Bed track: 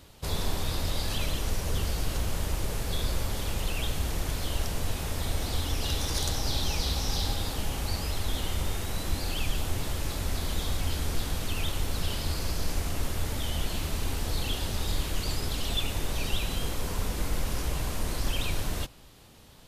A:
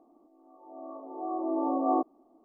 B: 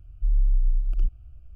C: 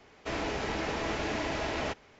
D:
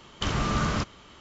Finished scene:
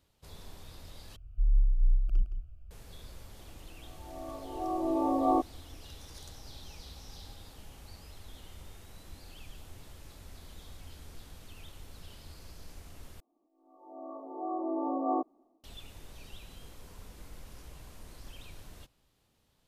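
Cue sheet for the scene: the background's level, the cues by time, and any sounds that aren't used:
bed track -19 dB
1.16 replace with B -4 dB + echo 0.166 s -10.5 dB
3.39 add A
13.2 replace with A -16.5 dB + AGC gain up to 15.5 dB
not used: C, D

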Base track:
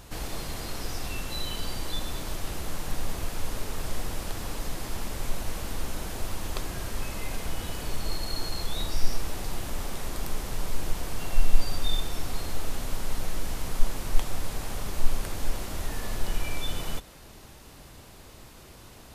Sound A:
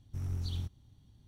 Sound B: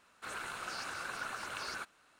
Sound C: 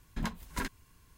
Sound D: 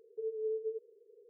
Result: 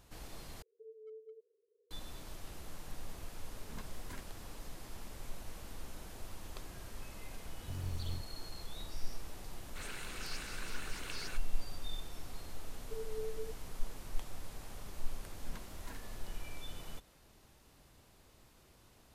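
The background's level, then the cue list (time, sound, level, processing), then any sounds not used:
base track -14.5 dB
0.62 replace with D -15.5 dB + hard clip -30.5 dBFS
3.53 add C -15 dB
7.54 add A -3 dB + G.711 law mismatch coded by A
9.53 add B -0.5 dB + band shelf 920 Hz -10 dB
12.73 add D -10.5 dB + comb 4.3 ms
15.3 add C -16.5 dB

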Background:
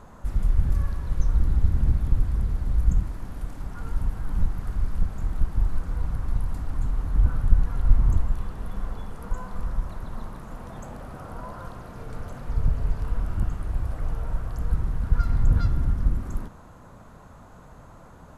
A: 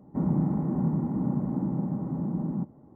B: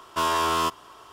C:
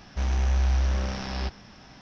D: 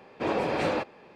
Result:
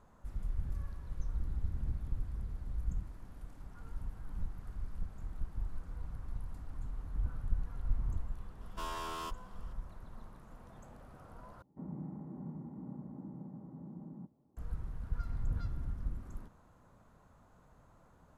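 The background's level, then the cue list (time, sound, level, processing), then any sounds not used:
background -15.5 dB
8.61 add B -17.5 dB
11.62 replace with A -18 dB
not used: C, D

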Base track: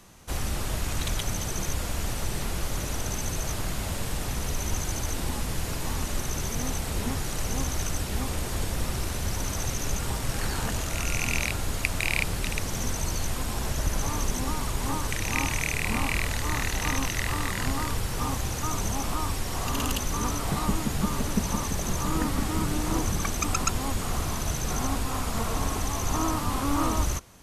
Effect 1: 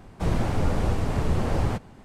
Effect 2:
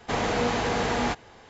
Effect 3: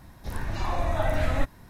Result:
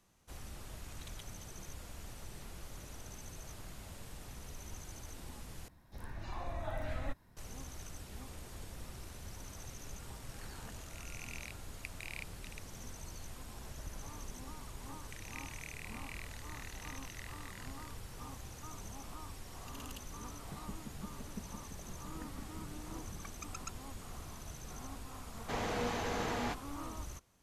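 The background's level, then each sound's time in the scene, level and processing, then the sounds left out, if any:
base track -18.5 dB
5.68 replace with 3 -14 dB
25.4 add 2 -11 dB
not used: 1

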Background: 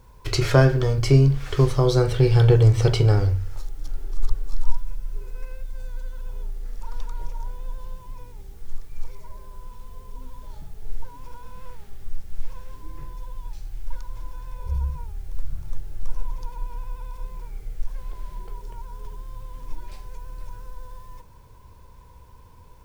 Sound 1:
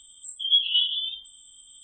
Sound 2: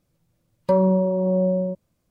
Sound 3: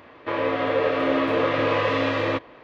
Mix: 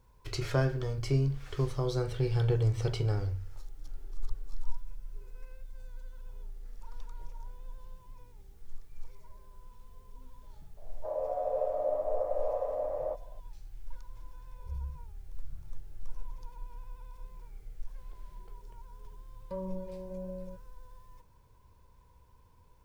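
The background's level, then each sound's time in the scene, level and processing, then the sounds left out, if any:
background -12.5 dB
10.77 add 3 -3 dB + Butterworth band-pass 650 Hz, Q 3.1
18.82 add 2 -16.5 dB + flange 1.3 Hz, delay 5.4 ms, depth 3.7 ms, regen -67%
not used: 1

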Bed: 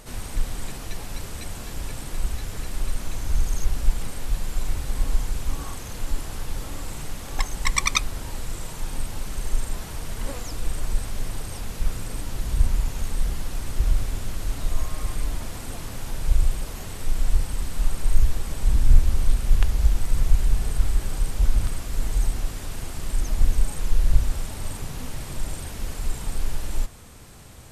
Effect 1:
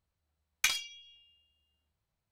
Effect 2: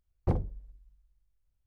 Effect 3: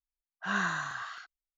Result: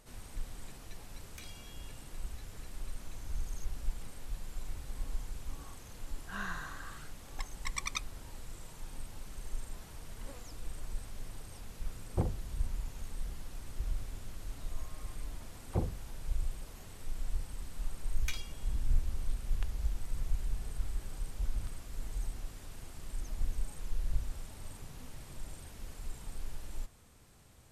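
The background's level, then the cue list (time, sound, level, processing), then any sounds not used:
bed -15 dB
0.74 add 1 -3.5 dB + compressor 3:1, threshold -52 dBFS
5.85 add 3 -10 dB
11.9 add 2 -4 dB
15.44 add 2 -4.5 dB + dispersion lows, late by 41 ms, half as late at 1200 Hz
17.64 add 1 -12.5 dB

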